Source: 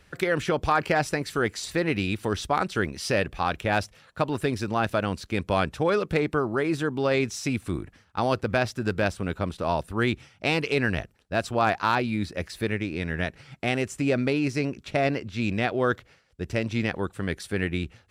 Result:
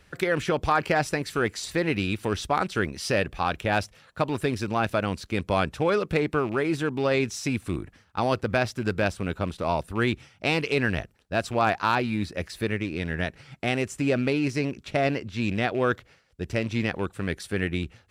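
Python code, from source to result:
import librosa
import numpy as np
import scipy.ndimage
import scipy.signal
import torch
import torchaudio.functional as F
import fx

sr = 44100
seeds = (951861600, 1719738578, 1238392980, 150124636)

y = fx.rattle_buzz(x, sr, strikes_db=-30.0, level_db=-34.0)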